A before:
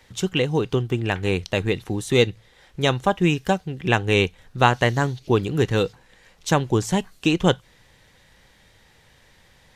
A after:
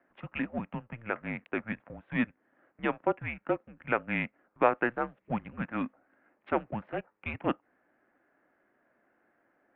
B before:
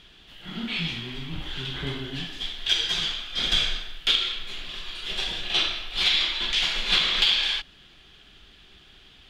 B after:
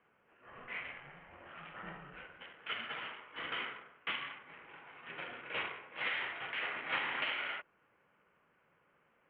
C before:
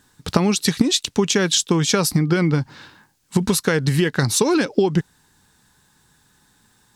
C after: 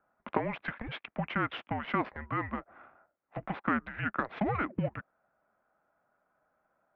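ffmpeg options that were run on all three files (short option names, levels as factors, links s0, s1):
-af "adynamicsmooth=sensitivity=3:basefreq=1500,highpass=f=500:t=q:w=0.5412,highpass=f=500:t=q:w=1.307,lowpass=f=2500:t=q:w=0.5176,lowpass=f=2500:t=q:w=0.7071,lowpass=f=2500:t=q:w=1.932,afreqshift=-230,volume=0.501"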